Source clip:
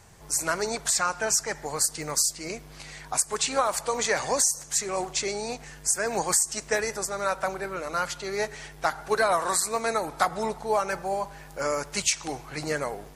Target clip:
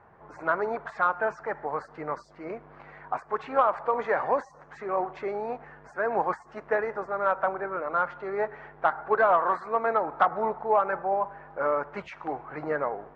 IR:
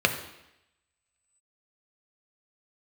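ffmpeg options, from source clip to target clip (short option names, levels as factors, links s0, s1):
-af "lowpass=f=1400:w=0.5412,lowpass=f=1400:w=1.3066,aemphasis=mode=production:type=riaa,asoftclip=type=tanh:threshold=0.266,volume=1.58"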